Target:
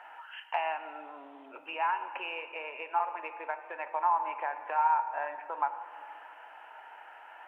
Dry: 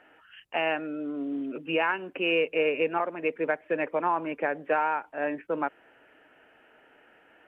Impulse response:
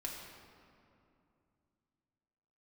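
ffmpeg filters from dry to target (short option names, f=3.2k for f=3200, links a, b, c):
-filter_complex "[0:a]acompressor=threshold=-40dB:ratio=4,highpass=f=890:t=q:w=6.3,asplit=2[a][b];[1:a]atrim=start_sample=2205[c];[b][c]afir=irnorm=-1:irlink=0,volume=-3dB[d];[a][d]amix=inputs=2:normalize=0"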